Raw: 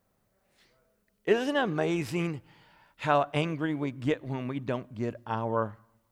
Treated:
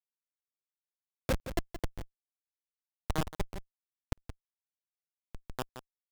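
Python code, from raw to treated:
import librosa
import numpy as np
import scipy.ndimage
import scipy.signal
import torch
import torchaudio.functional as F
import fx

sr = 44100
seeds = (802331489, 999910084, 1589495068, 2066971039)

p1 = fx.pitch_ramps(x, sr, semitones=5.0, every_ms=341)
p2 = scipy.signal.sosfilt(scipy.signal.butter(6, 5400.0, 'lowpass', fs=sr, output='sos'), p1)
p3 = fx.low_shelf(p2, sr, hz=70.0, db=3.5)
p4 = fx.comb_fb(p3, sr, f0_hz=220.0, decay_s=1.0, harmonics='all', damping=0.0, mix_pct=60)
p5 = fx.schmitt(p4, sr, flips_db=-27.0)
p6 = p5 + fx.echo_single(p5, sr, ms=172, db=-11.0, dry=0)
p7 = fx.buffer_crackle(p6, sr, first_s=0.62, period_s=0.39, block=2048, kind='zero')
y = p7 * librosa.db_to_amplitude(13.5)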